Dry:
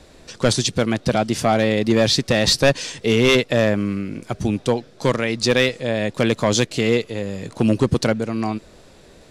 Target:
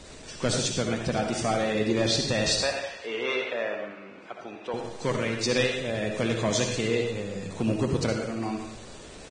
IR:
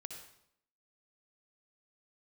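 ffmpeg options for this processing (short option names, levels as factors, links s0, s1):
-filter_complex "[0:a]aeval=exprs='val(0)+0.5*0.0224*sgn(val(0))':c=same,flanger=delay=4.3:depth=9.8:regen=87:speed=1.4:shape=sinusoidal,asettb=1/sr,asplit=3[s0][s1][s2];[s0]atrim=end=2.604[s3];[s1]atrim=start=2.6:end=4.74,asetpts=PTS-STARTPTS,afade=t=in:d=0.004:c=qsin,afade=t=out:st=2.136:d=0.004:c=qsin,highpass=560,lowpass=2500[s4];[s2]atrim=start=4.736[s5];[s3][s4]acrossfade=d=0.004:c1=hsin:c2=qsin[s6];[s6][s5]acrossfade=d=0.004:c1=qsin:c2=hsin,aecho=1:1:172|344|516|688:0.0794|0.0461|0.0267|0.0155[s7];[1:a]atrim=start_sample=2205[s8];[s7][s8]afir=irnorm=-1:irlink=0" -ar 22050 -c:a libvorbis -b:a 16k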